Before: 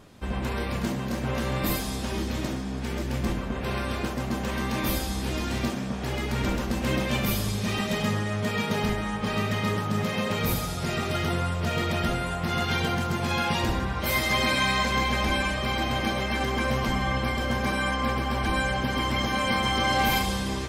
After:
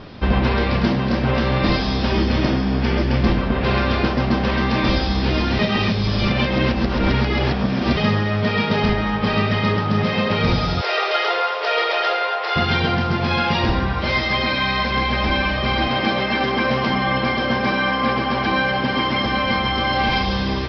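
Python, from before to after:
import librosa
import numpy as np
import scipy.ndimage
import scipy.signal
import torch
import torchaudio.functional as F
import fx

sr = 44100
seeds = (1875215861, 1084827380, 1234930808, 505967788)

y = fx.notch(x, sr, hz=3900.0, q=12.0, at=(2.13, 3.19))
y = fx.ellip_highpass(y, sr, hz=440.0, order=4, stop_db=50, at=(10.81, 12.56))
y = fx.highpass(y, sr, hz=140.0, slope=12, at=(15.87, 19.26))
y = fx.edit(y, sr, fx.reverse_span(start_s=5.59, length_s=2.38), tone=tone)
y = scipy.signal.sosfilt(scipy.signal.butter(16, 5400.0, 'lowpass', fs=sr, output='sos'), y)
y = fx.rider(y, sr, range_db=10, speed_s=0.5)
y = y * 10.0 ** (8.0 / 20.0)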